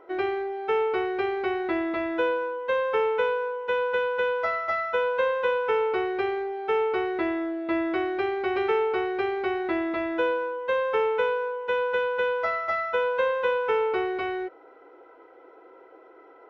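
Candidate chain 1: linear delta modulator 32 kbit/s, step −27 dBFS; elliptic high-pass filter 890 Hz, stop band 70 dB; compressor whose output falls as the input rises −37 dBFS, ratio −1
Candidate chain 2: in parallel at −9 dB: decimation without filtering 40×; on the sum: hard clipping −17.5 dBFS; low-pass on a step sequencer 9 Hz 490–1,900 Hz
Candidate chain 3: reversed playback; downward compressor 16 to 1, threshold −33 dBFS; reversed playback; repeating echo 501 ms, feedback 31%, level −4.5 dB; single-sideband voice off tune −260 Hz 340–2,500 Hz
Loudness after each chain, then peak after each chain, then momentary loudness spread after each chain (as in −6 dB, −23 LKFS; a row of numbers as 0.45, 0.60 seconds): −35.0, −21.5, −36.5 LKFS; −21.5, −7.5, −23.0 dBFS; 6, 5, 5 LU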